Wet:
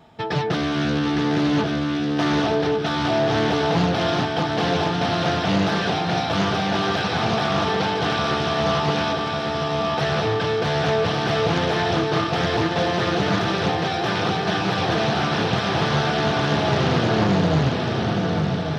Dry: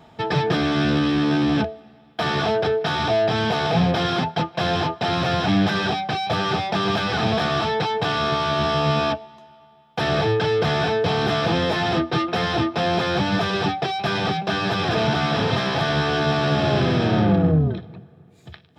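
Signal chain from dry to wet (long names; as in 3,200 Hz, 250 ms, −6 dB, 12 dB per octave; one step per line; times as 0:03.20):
feedback echo with a long and a short gap by turns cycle 1,147 ms, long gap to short 3 to 1, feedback 59%, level −5 dB
highs frequency-modulated by the lows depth 0.36 ms
level −2 dB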